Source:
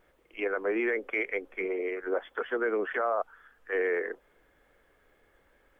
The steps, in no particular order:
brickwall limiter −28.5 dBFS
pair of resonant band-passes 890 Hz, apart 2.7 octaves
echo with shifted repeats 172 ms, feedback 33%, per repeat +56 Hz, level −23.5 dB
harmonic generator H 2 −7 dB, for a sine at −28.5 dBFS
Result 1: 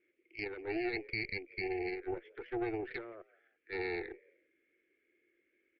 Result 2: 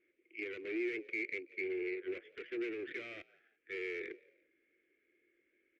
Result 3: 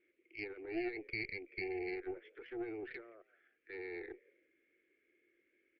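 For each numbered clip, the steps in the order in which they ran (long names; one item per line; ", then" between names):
pair of resonant band-passes, then echo with shifted repeats, then brickwall limiter, then harmonic generator
harmonic generator, then pair of resonant band-passes, then echo with shifted repeats, then brickwall limiter
brickwall limiter, then pair of resonant band-passes, then echo with shifted repeats, then harmonic generator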